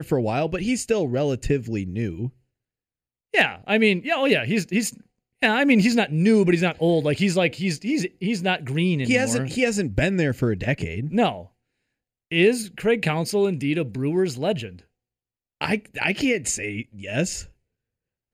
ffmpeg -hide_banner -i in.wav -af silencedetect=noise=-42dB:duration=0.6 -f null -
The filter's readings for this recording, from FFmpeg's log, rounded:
silence_start: 2.30
silence_end: 3.34 | silence_duration: 1.04
silence_start: 11.46
silence_end: 12.31 | silence_duration: 0.85
silence_start: 14.81
silence_end: 15.61 | silence_duration: 0.80
silence_start: 17.49
silence_end: 18.33 | silence_duration: 0.84